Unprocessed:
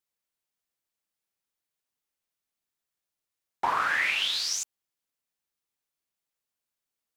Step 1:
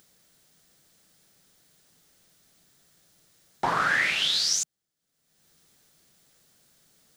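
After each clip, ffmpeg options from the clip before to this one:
-af "equalizer=f=160:t=o:w=0.67:g=9,equalizer=f=1k:t=o:w=0.67:g=-8,equalizer=f=2.5k:t=o:w=0.67:g=-7,equalizer=f=16k:t=o:w=0.67:g=-10,acompressor=mode=upward:threshold=-51dB:ratio=2.5,volume=6.5dB"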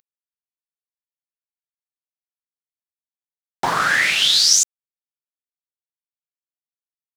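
-af "highshelf=f=3.6k:g=9.5,aeval=exprs='val(0)*gte(abs(val(0)),0.00944)':c=same,volume=4.5dB"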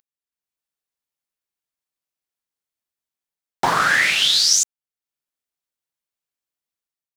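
-af "dynaudnorm=f=160:g=5:m=9dB,volume=-2.5dB"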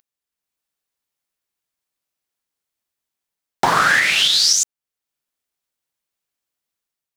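-af "alimiter=limit=-10.5dB:level=0:latency=1:release=386,volume=5.5dB"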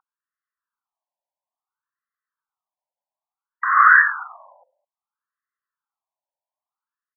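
-filter_complex "[0:a]highpass=f=230:t=q:w=0.5412,highpass=f=230:t=q:w=1.307,lowpass=f=2.2k:t=q:w=0.5176,lowpass=f=2.2k:t=q:w=0.7071,lowpass=f=2.2k:t=q:w=1.932,afreqshift=-140,acrossover=split=350[a][b];[a]adelay=210[c];[c][b]amix=inputs=2:normalize=0,afftfilt=real='re*between(b*sr/1024,720*pow(1500/720,0.5+0.5*sin(2*PI*0.59*pts/sr))/1.41,720*pow(1500/720,0.5+0.5*sin(2*PI*0.59*pts/sr))*1.41)':imag='im*between(b*sr/1024,720*pow(1500/720,0.5+0.5*sin(2*PI*0.59*pts/sr))/1.41,720*pow(1500/720,0.5+0.5*sin(2*PI*0.59*pts/sr))*1.41)':win_size=1024:overlap=0.75,volume=4.5dB"

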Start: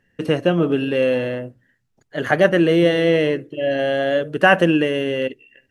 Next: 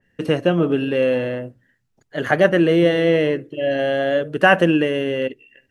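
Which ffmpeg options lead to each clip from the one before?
-af "adynamicequalizer=threshold=0.0224:dfrequency=2800:dqfactor=0.7:tfrequency=2800:tqfactor=0.7:attack=5:release=100:ratio=0.375:range=2:mode=cutabove:tftype=highshelf"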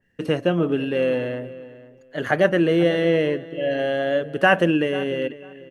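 -filter_complex "[0:a]asplit=2[a][b];[b]adelay=494,lowpass=f=2.8k:p=1,volume=-17dB,asplit=2[c][d];[d]adelay=494,lowpass=f=2.8k:p=1,volume=0.19[e];[a][c][e]amix=inputs=3:normalize=0,volume=-3dB"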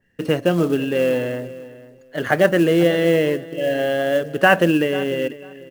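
-af "acrusher=bits=6:mode=log:mix=0:aa=0.000001,volume=2.5dB"

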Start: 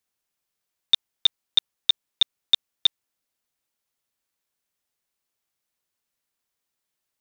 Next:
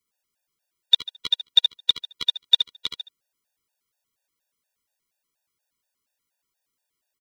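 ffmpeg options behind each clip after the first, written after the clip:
-filter_complex "[0:a]asplit=2[a][b];[b]aecho=0:1:72|144|216:0.501|0.1|0.02[c];[a][c]amix=inputs=2:normalize=0,afftfilt=real='re*gt(sin(2*PI*4.2*pts/sr)*(1-2*mod(floor(b*sr/1024/480),2)),0)':imag='im*gt(sin(2*PI*4.2*pts/sr)*(1-2*mod(floor(b*sr/1024/480),2)),0)':win_size=1024:overlap=0.75,volume=3.5dB"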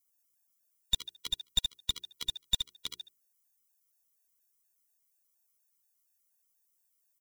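-af "bandreject=f=60:t=h:w=6,bandreject=f=120:t=h:w=6,bandreject=f=180:t=h:w=6,bandreject=f=240:t=h:w=6,bandreject=f=300:t=h:w=6,bandreject=f=360:t=h:w=6,bandreject=f=420:t=h:w=6,aexciter=amount=3.9:drive=6.4:freq=5.6k,aeval=exprs='clip(val(0),-1,0.106)':c=same,volume=-9dB"

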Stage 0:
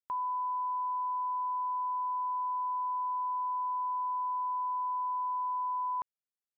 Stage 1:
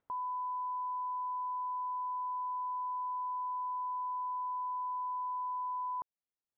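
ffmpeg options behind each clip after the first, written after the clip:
-af "acompressor=mode=upward:threshold=-55dB:ratio=2.5,lowpass=1.1k,volume=-1.5dB"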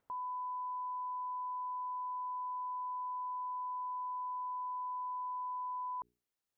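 -af "bandreject=f=60:t=h:w=6,bandreject=f=120:t=h:w=6,bandreject=f=180:t=h:w=6,bandreject=f=240:t=h:w=6,bandreject=f=300:t=h:w=6,bandreject=f=360:t=h:w=6,bandreject=f=420:t=h:w=6,alimiter=level_in=16.5dB:limit=-24dB:level=0:latency=1,volume=-16.5dB,volume=4dB"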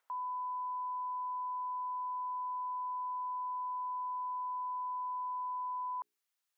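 -af "highpass=980,volume=4.5dB"

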